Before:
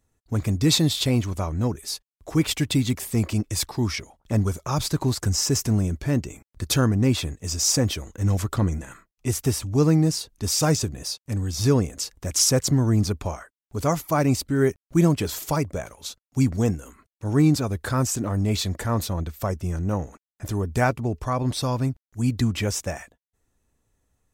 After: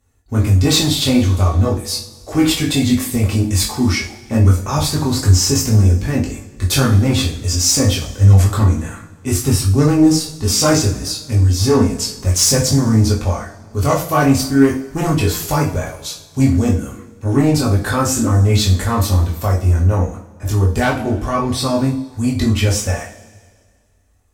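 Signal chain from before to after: sine folder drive 5 dB, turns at -7 dBFS; chorus voices 4, 0.35 Hz, delay 21 ms, depth 2.3 ms; two-slope reverb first 0.37 s, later 1.8 s, from -18 dB, DRR -0.5 dB

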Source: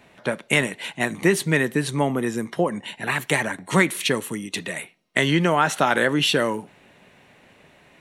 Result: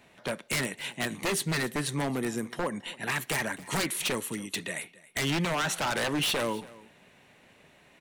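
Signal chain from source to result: high shelf 3500 Hz +4.5 dB; wavefolder -16.5 dBFS; on a send: echo 0.273 s -20.5 dB; on the sum: gain -6 dB

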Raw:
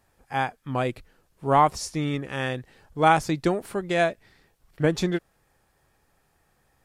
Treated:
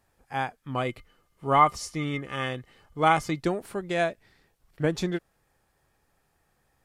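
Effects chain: 0.75–3.4 small resonant body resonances 1200/2100/3000 Hz, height 17 dB, ringing for 95 ms; gain -3.5 dB

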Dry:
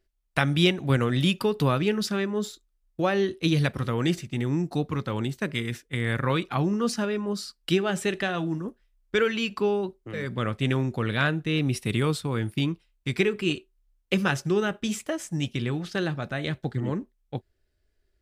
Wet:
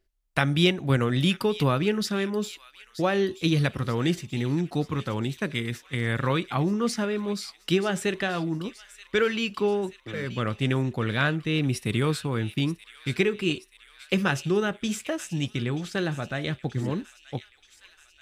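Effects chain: thin delay 0.93 s, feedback 61%, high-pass 2300 Hz, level -13 dB

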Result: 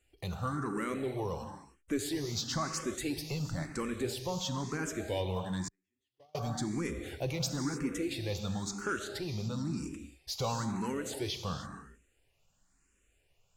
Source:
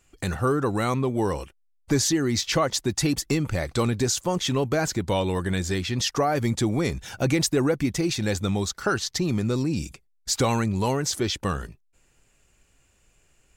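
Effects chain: non-linear reverb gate 0.33 s flat, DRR 6 dB; soft clip -14.5 dBFS, distortion -21 dB; 5.68–6.35 gate -18 dBFS, range -49 dB; endless phaser +0.99 Hz; gain -7.5 dB

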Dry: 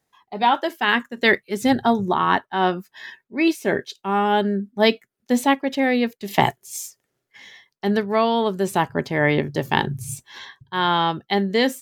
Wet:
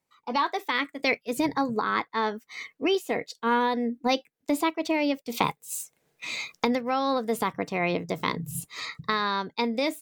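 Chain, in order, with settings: recorder AGC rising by 19 dB/s; varispeed +18%; gain -8 dB

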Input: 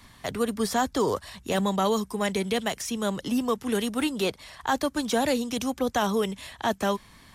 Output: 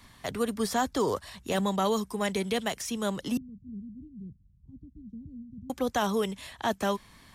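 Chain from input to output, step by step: 3.37–5.7 inverse Chebyshev low-pass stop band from 610 Hz, stop band 60 dB; gain -2.5 dB

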